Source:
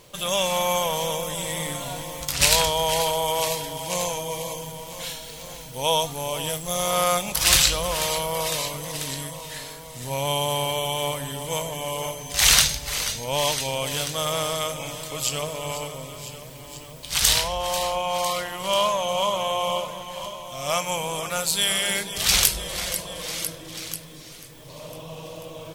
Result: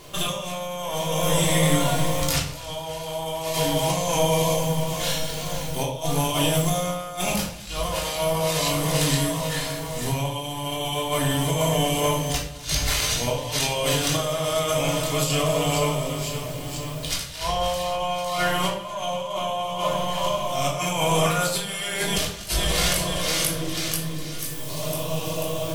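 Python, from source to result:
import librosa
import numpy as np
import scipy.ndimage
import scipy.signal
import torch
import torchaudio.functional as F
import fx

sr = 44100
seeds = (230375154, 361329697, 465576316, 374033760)

y = fx.high_shelf(x, sr, hz=5600.0, db=fx.steps((0.0, -2.0), (24.38, 9.5)))
y = fx.over_compress(y, sr, threshold_db=-29.0, ratio=-0.5)
y = fx.echo_feedback(y, sr, ms=250, feedback_pct=46, wet_db=-20.0)
y = fx.room_shoebox(y, sr, seeds[0], volume_m3=710.0, walls='furnished', distance_m=3.2)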